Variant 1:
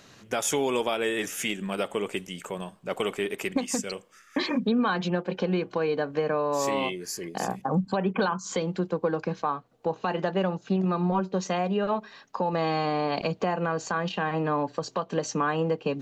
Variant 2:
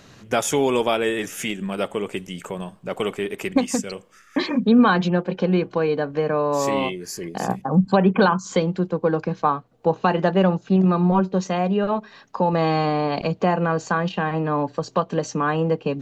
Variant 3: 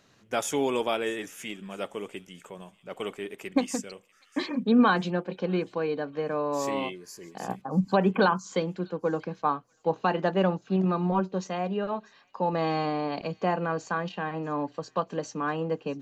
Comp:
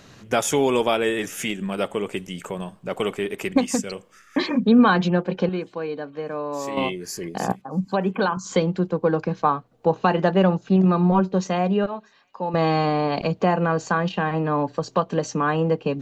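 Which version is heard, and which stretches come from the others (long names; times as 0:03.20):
2
0:05.49–0:06.77: punch in from 3
0:07.52–0:08.37: punch in from 3
0:11.86–0:12.54: punch in from 3
not used: 1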